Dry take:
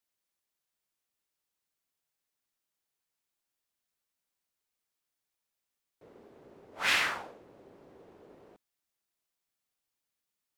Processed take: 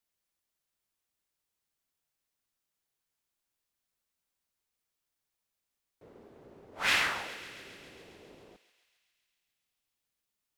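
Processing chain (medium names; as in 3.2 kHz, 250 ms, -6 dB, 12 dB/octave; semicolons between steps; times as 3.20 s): bass shelf 130 Hz +6.5 dB; thinning echo 136 ms, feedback 77%, high-pass 820 Hz, level -14 dB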